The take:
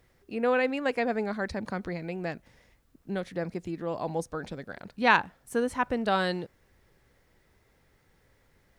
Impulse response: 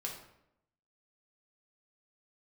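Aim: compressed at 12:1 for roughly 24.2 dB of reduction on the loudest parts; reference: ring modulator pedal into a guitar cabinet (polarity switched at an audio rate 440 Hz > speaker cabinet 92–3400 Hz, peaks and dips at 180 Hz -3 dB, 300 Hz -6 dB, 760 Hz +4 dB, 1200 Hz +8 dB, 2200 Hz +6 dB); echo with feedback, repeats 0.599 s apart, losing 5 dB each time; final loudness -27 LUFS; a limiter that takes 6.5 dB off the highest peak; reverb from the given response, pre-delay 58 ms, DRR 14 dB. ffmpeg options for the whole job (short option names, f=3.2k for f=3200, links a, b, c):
-filter_complex "[0:a]acompressor=threshold=-40dB:ratio=12,alimiter=level_in=12dB:limit=-24dB:level=0:latency=1,volume=-12dB,aecho=1:1:599|1198|1797|2396|2995|3594|4193:0.562|0.315|0.176|0.0988|0.0553|0.031|0.0173,asplit=2[a][b];[1:a]atrim=start_sample=2205,adelay=58[c];[b][c]afir=irnorm=-1:irlink=0,volume=-14dB[d];[a][d]amix=inputs=2:normalize=0,aeval=exprs='val(0)*sgn(sin(2*PI*440*n/s))':c=same,highpass=92,equalizer=f=180:t=q:w=4:g=-3,equalizer=f=300:t=q:w=4:g=-6,equalizer=f=760:t=q:w=4:g=4,equalizer=f=1.2k:t=q:w=4:g=8,equalizer=f=2.2k:t=q:w=4:g=6,lowpass=f=3.4k:w=0.5412,lowpass=f=3.4k:w=1.3066,volume=16.5dB"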